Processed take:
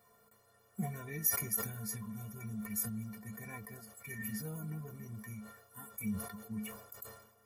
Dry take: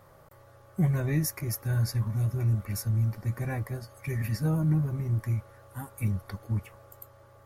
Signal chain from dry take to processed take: high-pass 55 Hz; treble shelf 6.5 kHz +11 dB; inharmonic resonator 210 Hz, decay 0.22 s, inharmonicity 0.03; decay stretcher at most 74 dB/s; trim +2.5 dB

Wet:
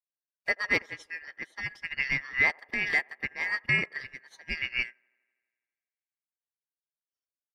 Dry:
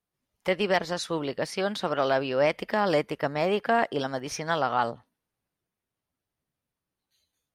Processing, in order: four frequency bands reordered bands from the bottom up 2143; feedback echo behind a band-pass 82 ms, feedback 73%, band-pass 730 Hz, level -7 dB; upward expansion 2.5:1, over -39 dBFS

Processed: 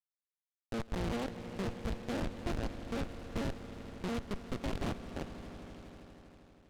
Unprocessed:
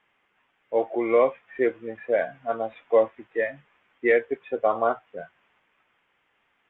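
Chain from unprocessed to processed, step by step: cycle switcher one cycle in 2, muted; 2.22–4.64 s: bass shelf 410 Hz +5.5 dB; compression 12:1, threshold -28 dBFS, peak gain reduction 15.5 dB; Schmitt trigger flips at -33 dBFS; distance through air 190 m; echo with a slow build-up 80 ms, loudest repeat 5, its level -16.5 dB; delay time shaken by noise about 1.8 kHz, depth 0.075 ms; trim +4.5 dB

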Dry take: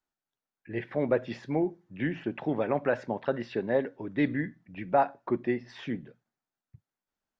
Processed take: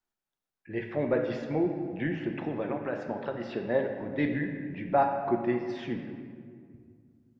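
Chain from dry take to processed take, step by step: 2.21–3.67 s: compression, threshold -28 dBFS, peak gain reduction 7.5 dB; on a send: reverberation RT60 2.1 s, pre-delay 5 ms, DRR 3.5 dB; on the sum: trim -1.5 dB

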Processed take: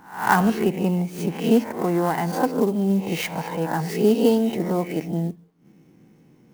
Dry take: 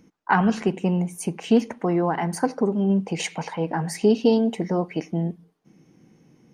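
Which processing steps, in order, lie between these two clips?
reverse spectral sustain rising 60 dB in 0.48 s; distance through air 55 m; sampling jitter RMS 0.024 ms

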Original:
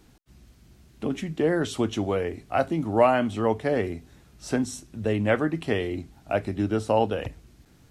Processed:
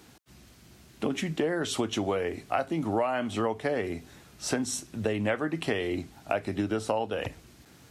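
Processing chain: high-pass 74 Hz; bass shelf 360 Hz -7 dB; compression 8:1, threshold -31 dBFS, peak gain reduction 15.5 dB; trim +6.5 dB

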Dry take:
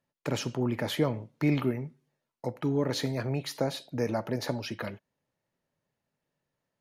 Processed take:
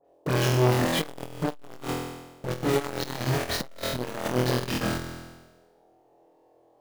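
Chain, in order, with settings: square wave that keeps the level; phase dispersion highs, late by 50 ms, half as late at 2 kHz; in parallel at -6.5 dB: Schmitt trigger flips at -32 dBFS; on the sum: band noise 310–800 Hz -65 dBFS; flutter echo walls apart 4.1 m, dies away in 1.1 s; transformer saturation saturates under 640 Hz; trim -2 dB

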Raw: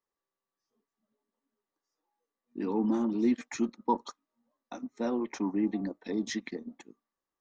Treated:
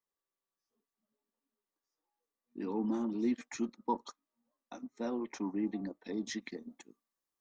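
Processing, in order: treble shelf 4.4 kHz +2.5 dB, from 6.42 s +9.5 dB; trim -5.5 dB

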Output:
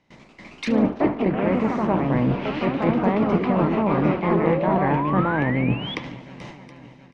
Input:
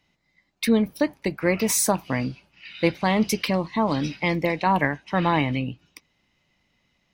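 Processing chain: spectral levelling over time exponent 0.6; gate with hold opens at -34 dBFS; reverse; compression 6:1, threshold -28 dBFS, peak gain reduction 14.5 dB; reverse; bass shelf 200 Hz +5.5 dB; shuffle delay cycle 722 ms, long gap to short 1.5:1, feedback 46%, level -18 dB; ever faster or slower copies 103 ms, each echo +2 st, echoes 3; level rider gain up to 7.5 dB; painted sound rise, 4.30–5.95 s, 370–3500 Hz -26 dBFS; low-pass that closes with the level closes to 1.6 kHz, closed at -18 dBFS; distance through air 110 m; feedback delay 73 ms, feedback 50%, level -17 dB

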